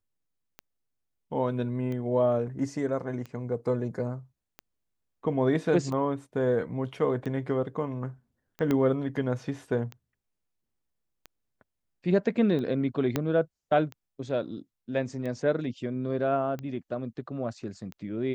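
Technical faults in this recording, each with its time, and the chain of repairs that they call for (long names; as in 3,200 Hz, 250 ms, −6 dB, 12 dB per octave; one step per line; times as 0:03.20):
scratch tick 45 rpm −25 dBFS
0:08.71: click −15 dBFS
0:13.16: click −12 dBFS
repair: click removal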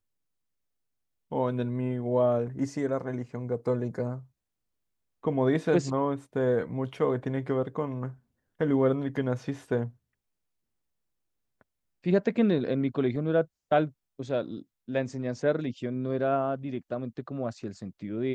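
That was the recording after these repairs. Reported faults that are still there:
0:08.71: click
0:13.16: click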